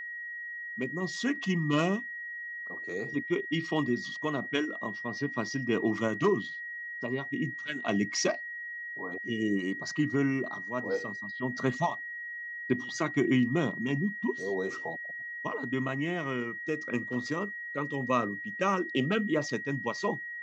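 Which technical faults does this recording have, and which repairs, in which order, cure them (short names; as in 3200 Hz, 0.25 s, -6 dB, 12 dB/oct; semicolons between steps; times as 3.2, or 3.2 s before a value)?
tone 1900 Hz -37 dBFS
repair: notch 1900 Hz, Q 30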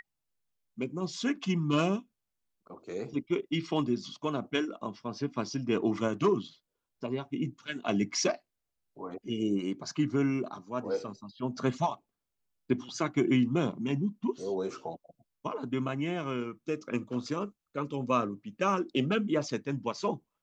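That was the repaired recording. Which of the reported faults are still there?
none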